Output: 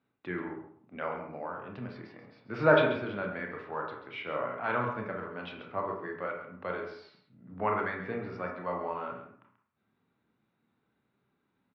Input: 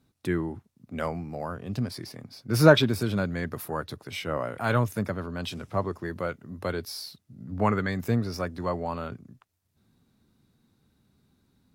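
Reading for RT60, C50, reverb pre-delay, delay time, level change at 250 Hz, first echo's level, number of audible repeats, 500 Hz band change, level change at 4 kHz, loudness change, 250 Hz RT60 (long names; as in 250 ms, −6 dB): 0.60 s, 4.5 dB, 25 ms, 135 ms, −9.5 dB, −11.0 dB, 1, −3.5 dB, −11.5 dB, −5.0 dB, 0.55 s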